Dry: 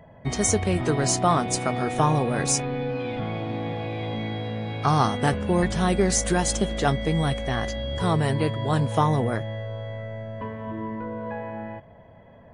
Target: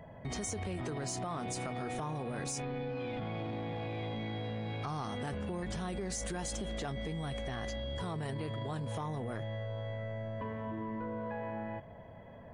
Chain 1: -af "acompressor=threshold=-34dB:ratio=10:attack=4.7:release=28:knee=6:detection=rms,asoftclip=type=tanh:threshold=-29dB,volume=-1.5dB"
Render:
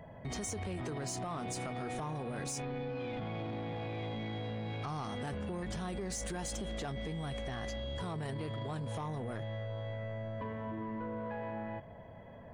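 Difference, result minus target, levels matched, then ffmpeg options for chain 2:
soft clip: distortion +12 dB
-af "acompressor=threshold=-34dB:ratio=10:attack=4.7:release=28:knee=6:detection=rms,asoftclip=type=tanh:threshold=-22dB,volume=-1.5dB"

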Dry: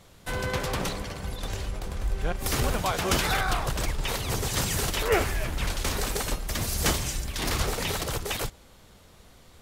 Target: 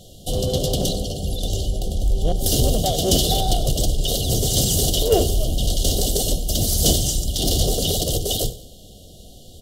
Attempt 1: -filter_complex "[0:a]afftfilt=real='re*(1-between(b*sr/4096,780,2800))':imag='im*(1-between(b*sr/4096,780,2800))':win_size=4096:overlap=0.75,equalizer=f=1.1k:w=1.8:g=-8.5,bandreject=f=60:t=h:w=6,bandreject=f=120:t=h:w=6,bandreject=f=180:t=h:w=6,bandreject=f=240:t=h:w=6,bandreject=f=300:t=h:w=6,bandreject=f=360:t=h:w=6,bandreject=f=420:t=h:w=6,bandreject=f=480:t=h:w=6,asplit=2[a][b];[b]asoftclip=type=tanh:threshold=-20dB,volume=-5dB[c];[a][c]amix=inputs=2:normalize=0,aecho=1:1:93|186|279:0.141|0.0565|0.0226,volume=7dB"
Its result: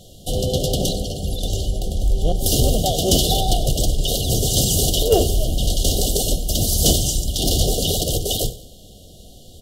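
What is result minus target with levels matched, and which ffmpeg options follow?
soft clip: distortion -9 dB
-filter_complex "[0:a]afftfilt=real='re*(1-between(b*sr/4096,780,2800))':imag='im*(1-between(b*sr/4096,780,2800))':win_size=4096:overlap=0.75,equalizer=f=1.1k:w=1.8:g=-8.5,bandreject=f=60:t=h:w=6,bandreject=f=120:t=h:w=6,bandreject=f=180:t=h:w=6,bandreject=f=240:t=h:w=6,bandreject=f=300:t=h:w=6,bandreject=f=360:t=h:w=6,bandreject=f=420:t=h:w=6,bandreject=f=480:t=h:w=6,asplit=2[a][b];[b]asoftclip=type=tanh:threshold=-29dB,volume=-5dB[c];[a][c]amix=inputs=2:normalize=0,aecho=1:1:93|186|279:0.141|0.0565|0.0226,volume=7dB"

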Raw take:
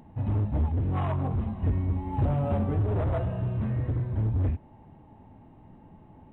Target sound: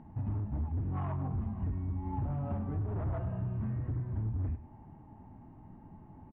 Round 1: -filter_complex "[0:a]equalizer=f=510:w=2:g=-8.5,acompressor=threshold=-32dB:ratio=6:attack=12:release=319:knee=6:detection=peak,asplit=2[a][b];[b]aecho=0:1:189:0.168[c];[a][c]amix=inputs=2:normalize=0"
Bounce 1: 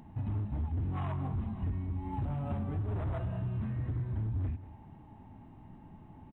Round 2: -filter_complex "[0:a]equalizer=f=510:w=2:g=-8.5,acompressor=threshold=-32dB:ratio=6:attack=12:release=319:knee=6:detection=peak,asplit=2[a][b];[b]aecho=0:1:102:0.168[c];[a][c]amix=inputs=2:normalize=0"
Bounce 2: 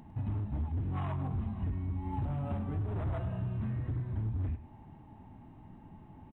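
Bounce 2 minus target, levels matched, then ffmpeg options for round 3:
2000 Hz band +4.0 dB
-filter_complex "[0:a]equalizer=f=510:w=2:g=-8.5,acompressor=threshold=-32dB:ratio=6:attack=12:release=319:knee=6:detection=peak,lowpass=1.6k,asplit=2[a][b];[b]aecho=0:1:102:0.168[c];[a][c]amix=inputs=2:normalize=0"

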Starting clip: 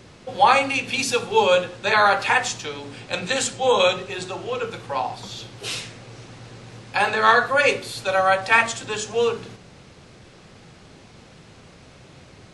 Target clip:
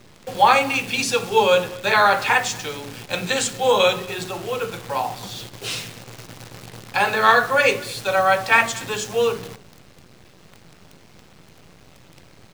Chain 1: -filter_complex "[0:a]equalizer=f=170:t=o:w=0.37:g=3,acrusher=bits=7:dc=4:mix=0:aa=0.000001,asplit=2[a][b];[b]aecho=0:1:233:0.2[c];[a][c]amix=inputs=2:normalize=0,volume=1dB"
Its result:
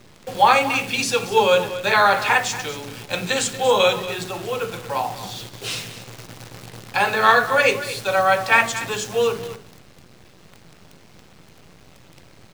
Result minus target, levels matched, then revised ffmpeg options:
echo-to-direct +8.5 dB
-filter_complex "[0:a]equalizer=f=170:t=o:w=0.37:g=3,acrusher=bits=7:dc=4:mix=0:aa=0.000001,asplit=2[a][b];[b]aecho=0:1:233:0.075[c];[a][c]amix=inputs=2:normalize=0,volume=1dB"

